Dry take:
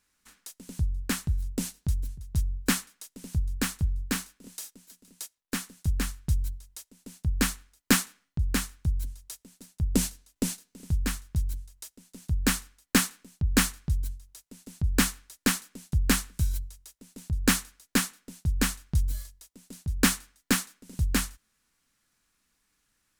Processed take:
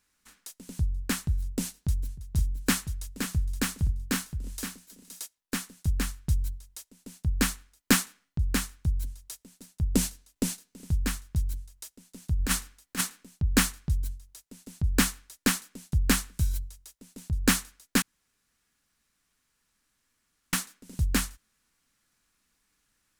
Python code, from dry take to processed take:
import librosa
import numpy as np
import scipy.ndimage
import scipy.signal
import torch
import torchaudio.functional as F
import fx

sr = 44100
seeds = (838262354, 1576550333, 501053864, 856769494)

y = fx.echo_single(x, sr, ms=520, db=-7.5, at=(2.35, 5.24), fade=0.02)
y = fx.over_compress(y, sr, threshold_db=-25.0, ratio=-0.5, at=(12.39, 13.01))
y = fx.edit(y, sr, fx.room_tone_fill(start_s=18.02, length_s=2.51), tone=tone)